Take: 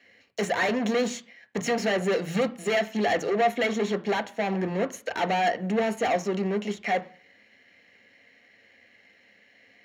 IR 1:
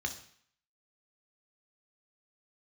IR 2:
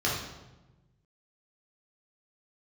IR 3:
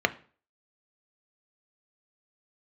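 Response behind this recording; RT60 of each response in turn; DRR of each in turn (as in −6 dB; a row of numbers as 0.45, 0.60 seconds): 3; 0.60, 1.1, 0.40 seconds; 4.0, −6.0, 8.5 decibels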